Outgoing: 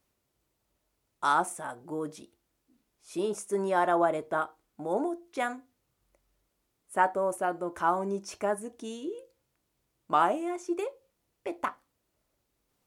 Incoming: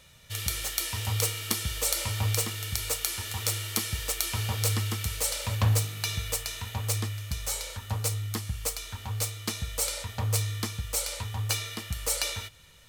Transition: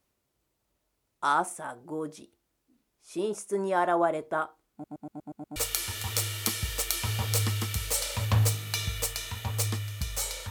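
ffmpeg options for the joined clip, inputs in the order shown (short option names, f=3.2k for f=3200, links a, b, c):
-filter_complex "[0:a]apad=whole_dur=10.5,atrim=end=10.5,asplit=7[a][b][c][d][e][f][g];[a]atrim=end=4.842[h];[b]atrim=start=4.718:end=4.842[i];[c]atrim=start=4.718:end=4.842[j];[d]atrim=start=4.718:end=4.842[k];[e]atrim=start=4.718:end=4.842[l];[f]atrim=start=4.718:end=4.842[m];[g]atrim=start=4.718:end=4.842[n];[1:a]atrim=start=2.858:end=7.8[o];[h][i]acrossfade=d=0.004:c1=hsin:c2=hsin[p];[p][j]acrossfade=d=0.004:c1=hsin:c2=hsin[q];[q][k]acrossfade=d=0.004:c1=hsin:c2=hsin[r];[r][l]acrossfade=d=0.004:c1=hsin:c2=hsin[s];[s][m]acrossfade=d=0.004:c1=hsin:c2=hsin[t];[t][n]acrossfade=d=0.004:c1=hsin:c2=hsin[u];[u][o]acrossfade=d=0.004:c1=hsin:c2=hsin"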